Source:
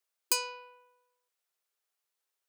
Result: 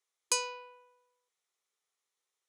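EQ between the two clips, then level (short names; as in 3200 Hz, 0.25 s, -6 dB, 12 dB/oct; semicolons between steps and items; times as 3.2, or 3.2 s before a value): speaker cabinet 340–9400 Hz, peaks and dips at 630 Hz -9 dB, 910 Hz -4 dB, 1400 Hz -3 dB, 2700 Hz -7 dB, 4700 Hz -8 dB, 8300 Hz -6 dB; bell 1600 Hz -8.5 dB 0.2 oct; +5.0 dB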